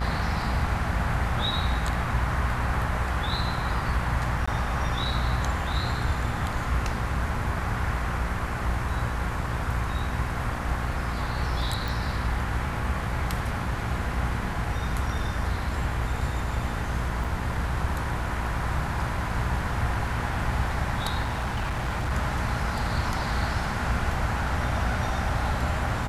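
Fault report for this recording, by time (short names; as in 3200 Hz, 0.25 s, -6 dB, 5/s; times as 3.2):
buzz 60 Hz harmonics 36 -32 dBFS
4.46–4.47 gap 15 ms
11.88 pop
17.24 gap 4.4 ms
21.22–22.12 clipped -24 dBFS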